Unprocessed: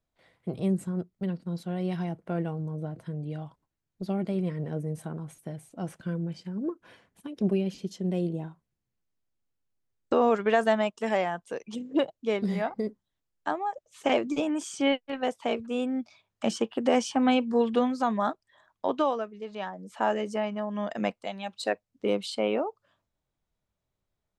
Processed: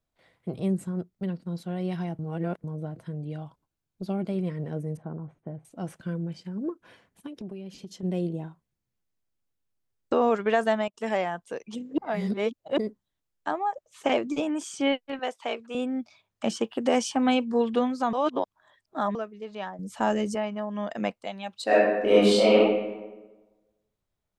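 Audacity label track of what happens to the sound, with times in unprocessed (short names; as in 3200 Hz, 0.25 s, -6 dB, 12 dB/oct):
2.190000	2.640000	reverse
3.370000	4.290000	notch 1900 Hz, Q 7.4
4.970000	5.650000	LPF 1100 Hz
7.280000	8.030000	compressor 5:1, threshold -36 dBFS
10.440000	11.380000	dip -18.5 dB, fades 0.44 s logarithmic
11.980000	12.780000	reverse
13.530000	14.070000	bell 1000 Hz +3.5 dB 1.8 oct
15.190000	15.750000	weighting filter A
16.610000	17.440000	high shelf 5900 Hz +6.5 dB
18.130000	19.150000	reverse
19.790000	20.350000	tone controls bass +11 dB, treble +9 dB
21.650000	22.550000	reverb throw, RT60 1.2 s, DRR -10 dB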